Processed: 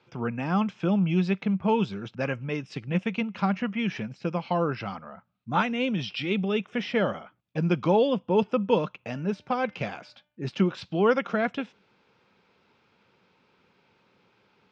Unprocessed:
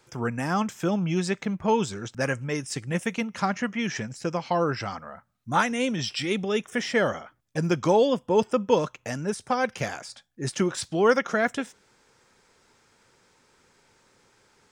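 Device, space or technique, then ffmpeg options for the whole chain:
guitar cabinet: -filter_complex "[0:a]asettb=1/sr,asplit=3[a][b][c];[a]atrim=end=8.964[d];[b]atrim=start=8.96:end=10.42,asetpts=PTS-STARTPTS,afade=t=in:d=0.004:c=qsin,afade=t=out:st=1.456:d=0.004:c=qsin,bandreject=f=298:t=h:w=4,bandreject=f=596:t=h:w=4,bandreject=f=894:t=h:w=4,bandreject=f=1.192k:t=h:w=4,bandreject=f=1.49k:t=h:w=4,bandreject=f=1.788k:t=h:w=4,bandreject=f=2.086k:t=h:w=4,bandreject=f=2.384k:t=h:w=4,bandreject=f=2.682k:t=h:w=4,bandreject=f=2.98k:t=h:w=4[e];[c]atrim=start=10.416[f];[d][e]acrossfade=d=0.004:c1=hsin:c2=qsin[g];[g][f]acrossfade=d=0.004:c1=qsin:c2=hsin,highpass=81,equalizer=f=190:t=q:w=4:g=7,equalizer=f=1.8k:t=q:w=4:g=-6,equalizer=f=2.6k:t=q:w=4:g=5,lowpass=f=4k:w=0.5412,lowpass=f=4k:w=1.3066,volume=-2dB"

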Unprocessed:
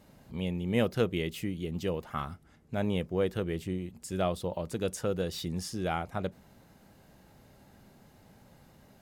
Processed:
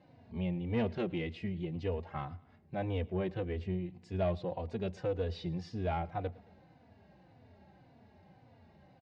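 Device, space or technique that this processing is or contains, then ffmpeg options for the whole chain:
barber-pole flanger into a guitar amplifier: -filter_complex "[0:a]asplit=2[a][b];[b]adelay=3.4,afreqshift=-1.8[c];[a][c]amix=inputs=2:normalize=1,asoftclip=type=tanh:threshold=-25dB,highpass=78,equalizer=f=86:t=q:w=4:g=9,equalizer=f=730:t=q:w=4:g=5,equalizer=f=1.3k:t=q:w=4:g=-7,equalizer=f=3.3k:t=q:w=4:g=-6,lowpass=f=4k:w=0.5412,lowpass=f=4k:w=1.3066,aecho=1:1:110|220|330:0.0708|0.0354|0.0177"

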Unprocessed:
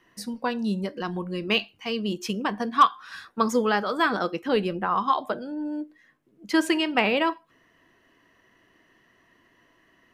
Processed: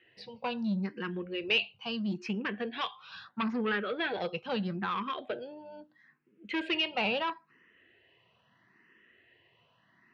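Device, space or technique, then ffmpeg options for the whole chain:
barber-pole phaser into a guitar amplifier: -filter_complex "[0:a]asplit=2[a][b];[b]afreqshift=0.76[c];[a][c]amix=inputs=2:normalize=1,asoftclip=type=tanh:threshold=-24dB,highpass=91,equalizer=f=120:t=q:w=4:g=4,equalizer=f=290:t=q:w=4:g=-9,equalizer=f=650:t=q:w=4:g=-4,equalizer=f=1.1k:t=q:w=4:g=-5,equalizer=f=2.6k:t=q:w=4:g=6,lowpass=f=4.1k:w=0.5412,lowpass=f=4.1k:w=1.3066,asettb=1/sr,asplit=3[d][e][f];[d]atrim=end=3.294[g];[e]atrim=start=3.29:end=4.18,asetpts=PTS-STARTPTS,afade=t=in:d=0.004:c=qsin,afade=t=out:st=0.886:d=0.004:c=qsin,lowpass=f=4.3k:w=0.5412,lowpass=f=4.3k:w=1.3066[h];[f]atrim=start=4.176[i];[g][h]acrossfade=d=0.004:c1=hsin:c2=qsin[j];[j][i]acrossfade=d=0.004:c1=qsin:c2=hsin"

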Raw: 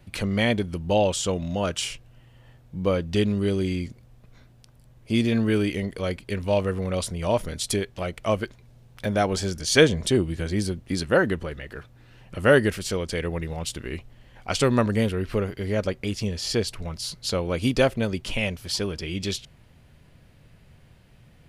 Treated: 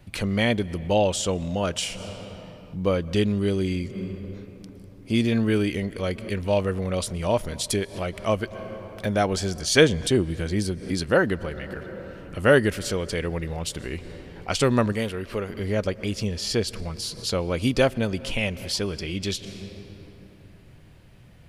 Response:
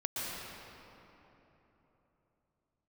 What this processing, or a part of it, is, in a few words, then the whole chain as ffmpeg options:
ducked reverb: -filter_complex "[0:a]asplit=3[a][b][c];[1:a]atrim=start_sample=2205[d];[b][d]afir=irnorm=-1:irlink=0[e];[c]apad=whole_len=947345[f];[e][f]sidechaincompress=threshold=-41dB:ratio=8:attack=33:release=119,volume=-12.5dB[g];[a][g]amix=inputs=2:normalize=0,asettb=1/sr,asplit=3[h][i][j];[h]atrim=end=14.924[k];[i]atrim=start=14.92:end=15.5,asetpts=PTS-STARTPTS,afade=t=in:d=0.004:c=qsin,afade=t=out:st=0.576:d=0.004:c=qsin,lowshelf=f=360:g=-8[l];[j]atrim=start=15.496[m];[k][l]acrossfade=d=0.004:c1=hsin:c2=qsin[n];[n][m]acrossfade=d=0.004:c1=qsin:c2=hsin"

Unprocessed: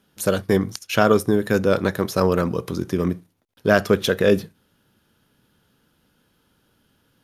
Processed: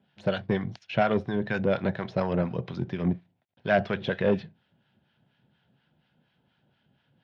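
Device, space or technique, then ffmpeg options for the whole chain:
guitar amplifier with harmonic tremolo: -filter_complex "[0:a]acrossover=split=880[a][b];[a]aeval=exprs='val(0)*(1-0.7/2+0.7/2*cos(2*PI*4.2*n/s))':c=same[c];[b]aeval=exprs='val(0)*(1-0.7/2-0.7/2*cos(2*PI*4.2*n/s))':c=same[d];[c][d]amix=inputs=2:normalize=0,asoftclip=type=tanh:threshold=-12dB,highpass=96,equalizer=f=140:t=q:w=4:g=6,equalizer=f=300:t=q:w=4:g=-7,equalizer=f=450:t=q:w=4:g=-7,equalizer=f=710:t=q:w=4:g=5,equalizer=f=1.2k:t=q:w=4:g=-10,lowpass=f=3.5k:w=0.5412,lowpass=f=3.5k:w=1.3066"

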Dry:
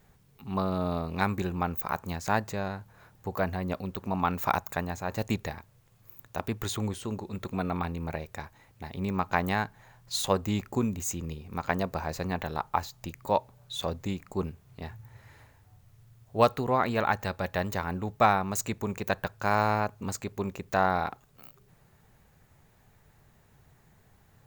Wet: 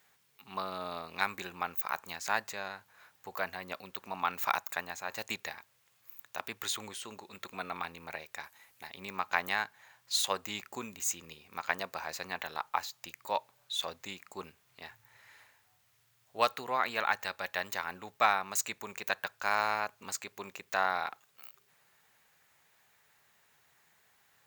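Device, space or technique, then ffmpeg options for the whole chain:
filter by subtraction: -filter_complex "[0:a]asplit=2[a][b];[b]lowpass=2.3k,volume=-1[c];[a][c]amix=inputs=2:normalize=0,asettb=1/sr,asplit=3[d][e][f];[d]atrim=end=8.434[g];[e]atrim=start=8.43:end=8.87,asetpts=PTS-STARTPTS,afade=t=in:d=0.004:c=qsin,afade=t=out:st=0.436:d=0.004:c=qsin,equalizer=f=13k:w=0.61:g=8.5[h];[f]atrim=start=8.866[i];[g][h]acrossfade=d=0.004:c1=hsin:c2=qsin[j];[j][i]acrossfade=d=0.004:c1=qsin:c2=hsin"

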